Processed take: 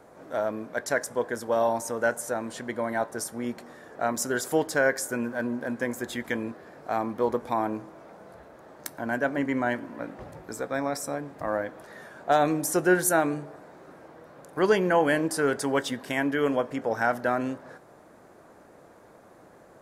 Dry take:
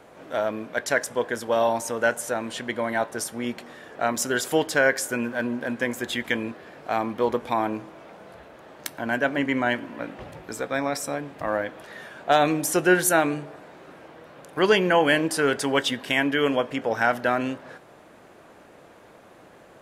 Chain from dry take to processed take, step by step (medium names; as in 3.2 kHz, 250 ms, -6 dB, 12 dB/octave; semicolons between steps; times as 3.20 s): peaking EQ 2.9 kHz -10.5 dB 0.95 oct; trim -2 dB